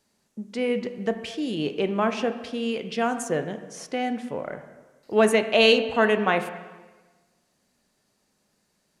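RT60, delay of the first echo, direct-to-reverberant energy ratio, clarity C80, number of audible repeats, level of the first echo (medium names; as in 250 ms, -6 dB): 1.3 s, no echo, 8.5 dB, 12.0 dB, no echo, no echo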